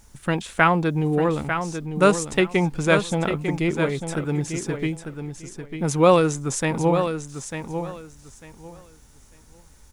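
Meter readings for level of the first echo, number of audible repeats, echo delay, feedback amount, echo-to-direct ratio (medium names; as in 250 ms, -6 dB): -8.0 dB, 2, 897 ms, 21%, -8.0 dB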